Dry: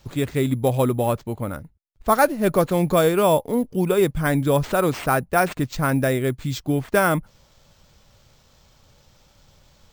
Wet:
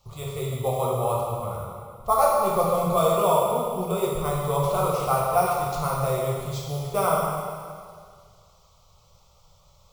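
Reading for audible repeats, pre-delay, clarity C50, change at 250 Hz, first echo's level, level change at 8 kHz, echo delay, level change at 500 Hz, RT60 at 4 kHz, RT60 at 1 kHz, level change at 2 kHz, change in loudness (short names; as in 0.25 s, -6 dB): none, 6 ms, -0.5 dB, -10.5 dB, none, -1.5 dB, none, -2.5 dB, 1.9 s, 1.9 s, -12.5 dB, -3.0 dB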